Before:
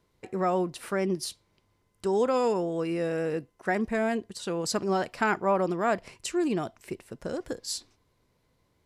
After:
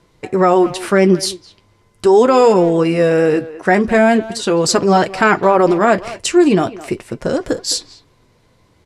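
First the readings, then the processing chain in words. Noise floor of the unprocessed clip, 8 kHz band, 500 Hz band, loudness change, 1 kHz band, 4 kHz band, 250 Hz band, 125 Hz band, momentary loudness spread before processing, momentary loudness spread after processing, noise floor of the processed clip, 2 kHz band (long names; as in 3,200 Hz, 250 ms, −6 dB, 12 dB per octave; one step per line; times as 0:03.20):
−71 dBFS, +14.5 dB, +15.5 dB, +15.0 dB, +14.5 dB, +15.5 dB, +15.5 dB, +15.0 dB, 10 LU, 10 LU, −56 dBFS, +14.5 dB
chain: flanger 0.39 Hz, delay 5.8 ms, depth 5.3 ms, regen −43%
low-pass filter 10,000 Hz 12 dB per octave
far-end echo of a speakerphone 210 ms, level −16 dB
boost into a limiter +20.5 dB
level −1 dB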